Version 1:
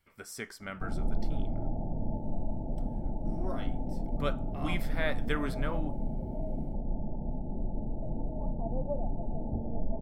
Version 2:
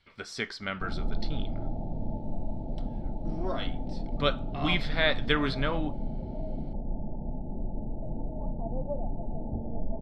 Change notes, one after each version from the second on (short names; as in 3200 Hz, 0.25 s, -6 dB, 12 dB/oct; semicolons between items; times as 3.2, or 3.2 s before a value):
speech +5.5 dB; master: add synth low-pass 4000 Hz, resonance Q 3.4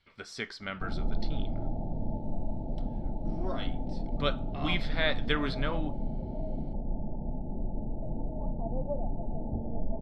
speech -3.5 dB